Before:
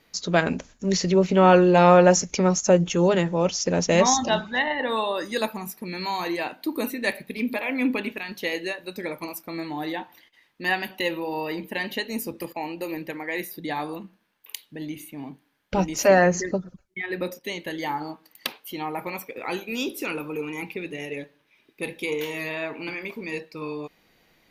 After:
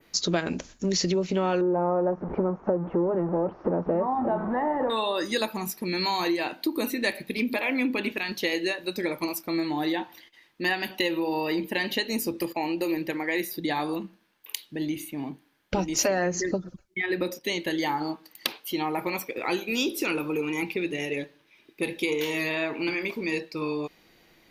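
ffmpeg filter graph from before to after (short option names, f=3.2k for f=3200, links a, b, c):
-filter_complex "[0:a]asettb=1/sr,asplit=3[a][b][c];[a]atrim=end=1.614[d];[b]atrim=start=1.61:end=4.9,asetpts=PTS-STARTPTS,afade=t=in:d=0.004:c=qsin,afade=t=out:st=3.286:d=0.004:c=qsin,aeval=exprs='val(0)+0.5*0.0944*sgn(val(0))':c=same,lowpass=f=1.1k:w=0.5412,lowpass=f=1.1k:w=1.3066,lowshelf=f=150:g=-9[e];[c]atrim=start=4.896[f];[d][e]acrossfade=d=0.004:c1=hsin:c2=qsin[g];[g][f]acrossfade=d=0.004:c1=qsin:c2=hsin,equalizer=f=340:w=5.9:g=6.5,acompressor=threshold=-25dB:ratio=6,adynamicequalizer=threshold=0.00355:dfrequency=4700:dqfactor=1:tfrequency=4700:tqfactor=1:attack=5:release=100:ratio=0.375:range=2.5:mode=boostabove:tftype=bell,volume=2dB"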